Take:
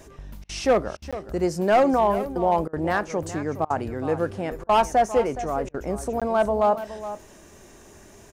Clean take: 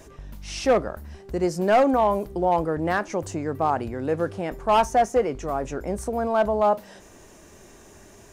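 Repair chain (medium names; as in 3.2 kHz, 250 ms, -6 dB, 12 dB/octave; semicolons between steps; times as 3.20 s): interpolate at 1.11/6.20 s, 16 ms; interpolate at 0.44/0.97/2.68/3.65/4.64/5.69 s, 50 ms; inverse comb 418 ms -13 dB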